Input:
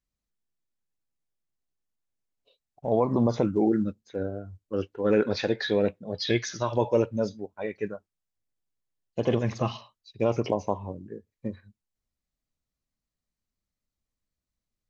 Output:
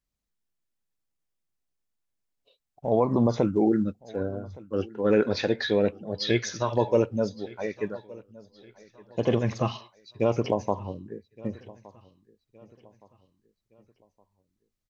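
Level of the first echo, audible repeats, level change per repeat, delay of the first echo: -22.0 dB, 2, -7.5 dB, 1167 ms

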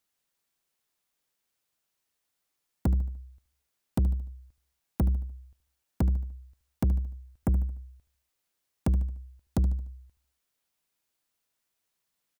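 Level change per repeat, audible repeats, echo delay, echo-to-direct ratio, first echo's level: -8.0 dB, 3, 74 ms, -13.0 dB, -14.0 dB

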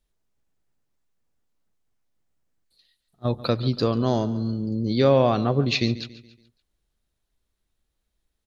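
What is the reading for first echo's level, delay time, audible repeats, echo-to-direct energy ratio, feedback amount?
-17.0 dB, 141 ms, 3, -16.0 dB, 45%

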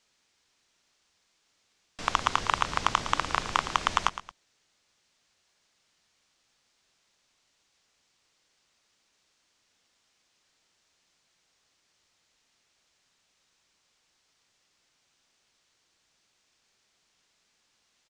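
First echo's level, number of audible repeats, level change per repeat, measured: -12.5 dB, 2, -8.0 dB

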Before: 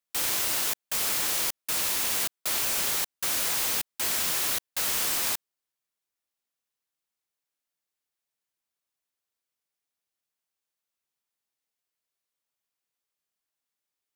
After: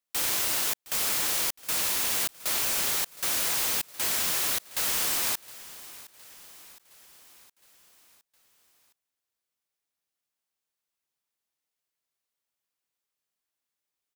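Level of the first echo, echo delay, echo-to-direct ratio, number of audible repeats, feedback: -19.0 dB, 714 ms, -17.5 dB, 4, 57%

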